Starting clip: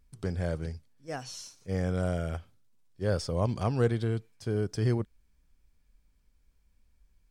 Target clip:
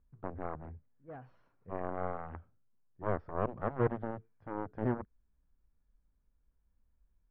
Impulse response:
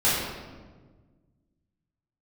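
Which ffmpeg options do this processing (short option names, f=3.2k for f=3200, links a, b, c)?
-af "aeval=exprs='0.2*(cos(1*acos(clip(val(0)/0.2,-1,1)))-cos(1*PI/2))+0.0501*(cos(7*acos(clip(val(0)/0.2,-1,1)))-cos(7*PI/2))':c=same,lowpass=f=1.6k:w=0.5412,lowpass=f=1.6k:w=1.3066,volume=-4.5dB"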